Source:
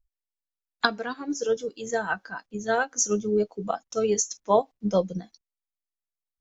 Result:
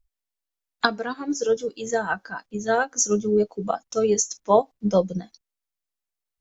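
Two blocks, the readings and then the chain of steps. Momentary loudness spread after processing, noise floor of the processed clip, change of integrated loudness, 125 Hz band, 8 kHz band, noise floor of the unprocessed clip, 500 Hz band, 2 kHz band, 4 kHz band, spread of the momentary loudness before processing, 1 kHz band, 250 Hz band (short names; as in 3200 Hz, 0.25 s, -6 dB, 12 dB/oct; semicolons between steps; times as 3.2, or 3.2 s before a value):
10 LU, under -85 dBFS, +3.0 dB, +3.5 dB, n/a, under -85 dBFS, +3.5 dB, +1.5 dB, +1.0 dB, 9 LU, +3.0 dB, +3.5 dB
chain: dynamic EQ 2700 Hz, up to -4 dB, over -39 dBFS, Q 0.82; gain +3.5 dB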